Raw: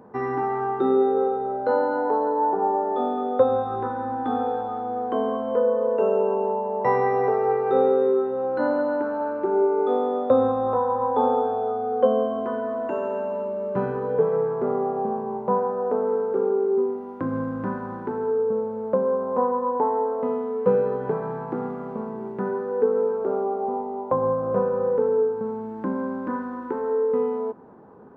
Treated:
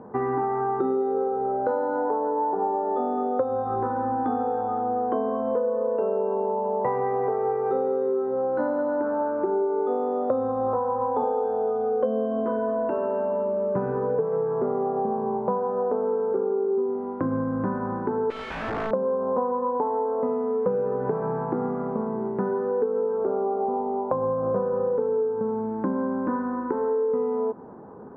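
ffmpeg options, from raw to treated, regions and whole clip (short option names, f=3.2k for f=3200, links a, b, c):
-filter_complex "[0:a]asettb=1/sr,asplit=3[a][b][c];[a]atrim=end=11.214[d];[b]atrim=start=11.21:end=12.9,asetpts=PTS-STARTPTS,afade=t=in:d=0.004:c=qsin,afade=t=out:st=1.686:d=0.004:c=qsin,bass=f=250:g=3,treble=f=4k:g=12,asplit=2[e][f];[f]adelay=14,volume=-3dB[g];[e][g]amix=inputs=2:normalize=0,atrim=end_sample=74529[h];[c]atrim=start=12.896[i];[d][h]acrossfade=d=0.004:c1=hsin:c2=qsin[j];[j][i]acrossfade=d=0.004:c1=qsin:c2=hsin,asettb=1/sr,asplit=3[k][l][m];[k]atrim=end=18.304[n];[l]atrim=start=18.3:end=18.91,asetpts=PTS-STARTPTS,afade=t=in:d=0.004:c=qsin,afade=t=out:st=0.606:d=0.004:c=qsin,highpass=88,asubboost=boost=6.5:cutoff=180,aeval=exprs='(mod(23.7*val(0)+1,2)-1)/23.7':c=same[o];[m]atrim=start=18.906[p];[n][o]acrossfade=d=0.004:c1=hsin:c2=qsin[q];[q][p]acrossfade=d=0.004:c1=qsin:c2=hsin,acompressor=threshold=-27dB:ratio=6,lowpass=1.5k,volume=5dB"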